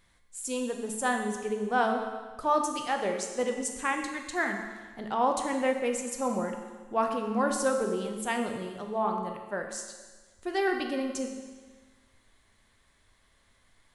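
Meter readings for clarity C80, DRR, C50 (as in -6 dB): 7.0 dB, 3.0 dB, 5.5 dB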